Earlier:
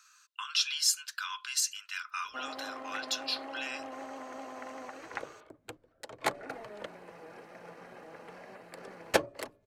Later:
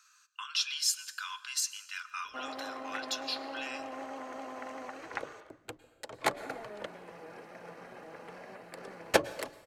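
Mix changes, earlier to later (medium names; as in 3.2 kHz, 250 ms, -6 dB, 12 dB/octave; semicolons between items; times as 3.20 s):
speech -3.5 dB; reverb: on, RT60 1.0 s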